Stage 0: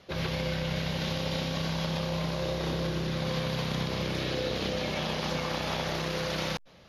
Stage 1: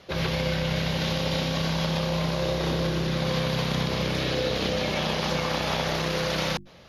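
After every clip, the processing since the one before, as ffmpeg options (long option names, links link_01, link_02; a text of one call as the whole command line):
ffmpeg -i in.wav -af "bandreject=frequency=50:width_type=h:width=6,bandreject=frequency=100:width_type=h:width=6,bandreject=frequency=150:width_type=h:width=6,bandreject=frequency=200:width_type=h:width=6,bandreject=frequency=250:width_type=h:width=6,bandreject=frequency=300:width_type=h:width=6,bandreject=frequency=350:width_type=h:width=6,volume=5dB" out.wav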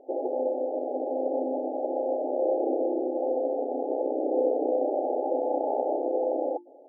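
ffmpeg -i in.wav -af "aeval=exprs='0.224*(cos(1*acos(clip(val(0)/0.224,-1,1)))-cos(1*PI/2))+0.0112*(cos(8*acos(clip(val(0)/0.224,-1,1)))-cos(8*PI/2))':channel_layout=same,afftfilt=real='re*between(b*sr/4096,250,870)':imag='im*between(b*sr/4096,250,870)':win_size=4096:overlap=0.75,volume=4dB" out.wav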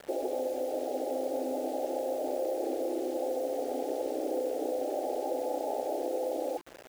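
ffmpeg -i in.wav -af "acompressor=threshold=-29dB:ratio=6,acrusher=bits=7:mix=0:aa=0.000001" out.wav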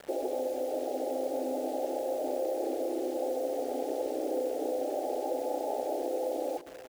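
ffmpeg -i in.wav -af "aecho=1:1:619:0.141" out.wav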